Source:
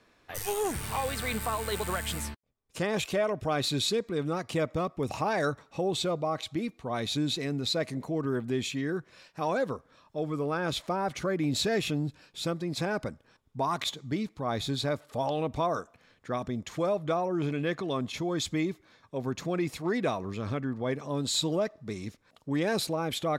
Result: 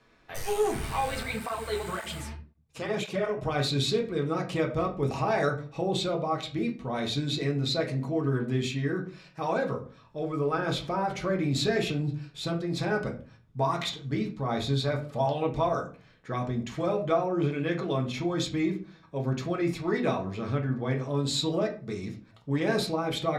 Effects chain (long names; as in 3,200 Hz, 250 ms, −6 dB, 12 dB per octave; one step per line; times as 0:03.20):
high-shelf EQ 10,000 Hz −8 dB
convolution reverb RT60 0.40 s, pre-delay 5 ms, DRR 0 dB
0:01.23–0:03.42: through-zero flanger with one copy inverted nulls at 1.9 Hz, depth 6.6 ms
level −1.5 dB